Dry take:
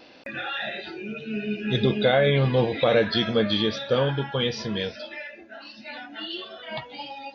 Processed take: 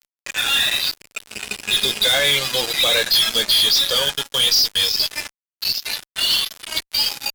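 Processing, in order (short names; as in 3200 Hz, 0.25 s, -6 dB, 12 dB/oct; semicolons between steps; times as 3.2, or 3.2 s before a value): band-pass 5100 Hz, Q 5.6; loudest bins only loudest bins 64; fuzz box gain 53 dB, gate -55 dBFS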